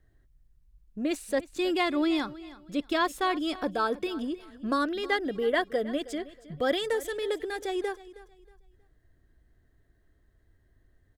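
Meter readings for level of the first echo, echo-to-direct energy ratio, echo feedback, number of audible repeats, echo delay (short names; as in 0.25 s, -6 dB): -18.0 dB, -17.5 dB, 29%, 2, 0.317 s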